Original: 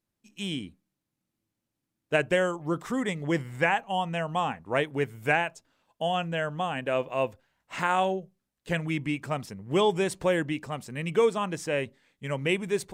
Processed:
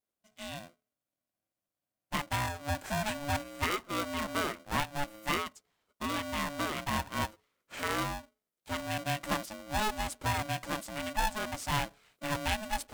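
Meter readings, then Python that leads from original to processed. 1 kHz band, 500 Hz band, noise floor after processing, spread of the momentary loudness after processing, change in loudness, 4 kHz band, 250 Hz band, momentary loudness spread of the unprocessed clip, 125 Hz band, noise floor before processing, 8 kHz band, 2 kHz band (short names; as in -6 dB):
-3.5 dB, -12.0 dB, under -85 dBFS, 7 LU, -5.5 dB, -1.0 dB, -7.0 dB, 9 LU, -4.5 dB, -85 dBFS, +3.0 dB, -5.0 dB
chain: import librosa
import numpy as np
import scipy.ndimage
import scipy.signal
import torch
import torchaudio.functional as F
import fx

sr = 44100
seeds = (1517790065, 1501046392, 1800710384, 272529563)

y = fx.high_shelf(x, sr, hz=9900.0, db=9.0)
y = fx.rider(y, sr, range_db=10, speed_s=0.5)
y = y * np.sign(np.sin(2.0 * np.pi * 430.0 * np.arange(len(y)) / sr))
y = F.gain(torch.from_numpy(y), -5.5).numpy()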